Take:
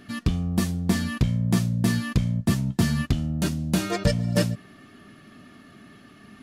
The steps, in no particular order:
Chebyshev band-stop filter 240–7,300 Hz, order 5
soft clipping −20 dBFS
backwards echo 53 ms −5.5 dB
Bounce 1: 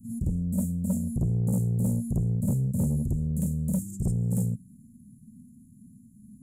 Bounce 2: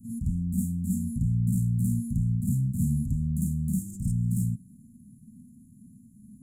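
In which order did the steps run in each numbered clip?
backwards echo, then Chebyshev band-stop filter, then soft clipping
soft clipping, then backwards echo, then Chebyshev band-stop filter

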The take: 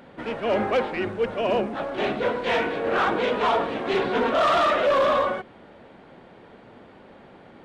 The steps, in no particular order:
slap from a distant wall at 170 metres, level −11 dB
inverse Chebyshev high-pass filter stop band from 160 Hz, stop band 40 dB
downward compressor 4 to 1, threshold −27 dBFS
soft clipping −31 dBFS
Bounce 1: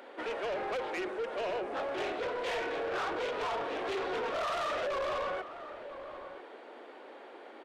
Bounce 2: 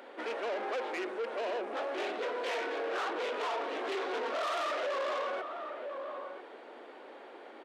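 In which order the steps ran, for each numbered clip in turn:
downward compressor, then inverse Chebyshev high-pass filter, then soft clipping, then slap from a distant wall
downward compressor, then slap from a distant wall, then soft clipping, then inverse Chebyshev high-pass filter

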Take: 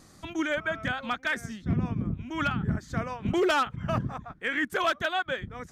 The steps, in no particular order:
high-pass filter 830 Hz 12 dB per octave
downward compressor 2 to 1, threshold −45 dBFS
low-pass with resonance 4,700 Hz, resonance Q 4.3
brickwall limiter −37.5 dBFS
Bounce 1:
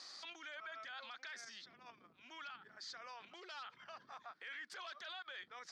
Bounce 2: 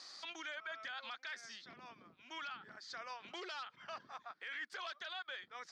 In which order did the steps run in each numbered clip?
low-pass with resonance, then brickwall limiter, then downward compressor, then high-pass filter
downward compressor, then high-pass filter, then brickwall limiter, then low-pass with resonance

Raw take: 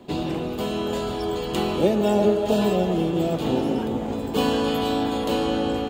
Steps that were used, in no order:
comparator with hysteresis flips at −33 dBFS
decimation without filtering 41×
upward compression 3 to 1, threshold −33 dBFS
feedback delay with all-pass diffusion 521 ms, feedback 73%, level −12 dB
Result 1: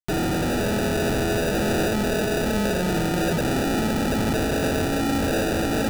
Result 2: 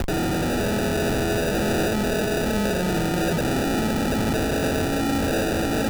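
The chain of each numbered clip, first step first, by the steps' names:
comparator with hysteresis, then feedback delay with all-pass diffusion, then decimation without filtering, then upward compression
upward compression, then comparator with hysteresis, then feedback delay with all-pass diffusion, then decimation without filtering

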